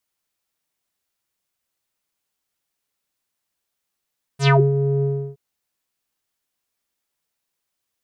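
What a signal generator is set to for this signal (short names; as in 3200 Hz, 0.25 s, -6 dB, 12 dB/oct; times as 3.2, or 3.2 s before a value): synth note square C#3 12 dB/oct, low-pass 360 Hz, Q 5.2, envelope 5 oct, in 0.21 s, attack 88 ms, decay 0.24 s, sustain -8 dB, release 0.33 s, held 0.64 s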